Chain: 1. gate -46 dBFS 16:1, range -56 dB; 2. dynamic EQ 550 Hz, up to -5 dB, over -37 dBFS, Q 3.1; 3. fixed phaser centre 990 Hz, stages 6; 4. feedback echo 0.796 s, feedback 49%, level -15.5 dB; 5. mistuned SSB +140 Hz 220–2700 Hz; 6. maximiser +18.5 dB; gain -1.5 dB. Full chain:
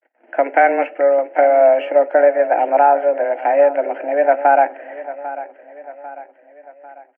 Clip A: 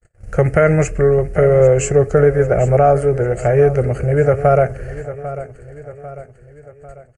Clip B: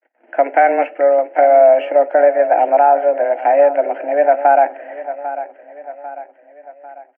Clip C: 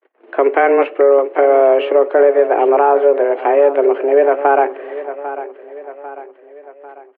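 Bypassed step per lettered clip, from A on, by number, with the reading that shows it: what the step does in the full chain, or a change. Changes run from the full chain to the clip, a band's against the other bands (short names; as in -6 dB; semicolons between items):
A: 5, 250 Hz band +11.0 dB; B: 2, crest factor change -1.5 dB; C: 3, crest factor change -2.0 dB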